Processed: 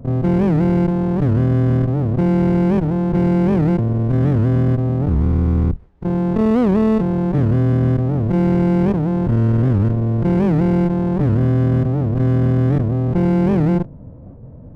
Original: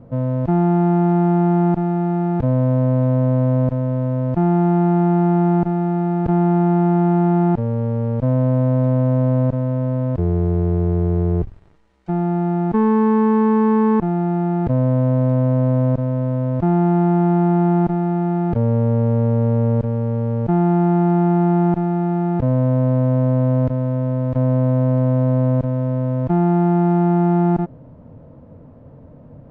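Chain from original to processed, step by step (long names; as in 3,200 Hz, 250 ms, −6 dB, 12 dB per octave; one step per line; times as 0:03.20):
reversed piece by piece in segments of 48 ms
spectral tilt −2.5 dB per octave
asymmetric clip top −25 dBFS, bottom −5 dBFS
phase-vocoder stretch with locked phases 0.5×
wow of a warped record 78 rpm, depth 250 cents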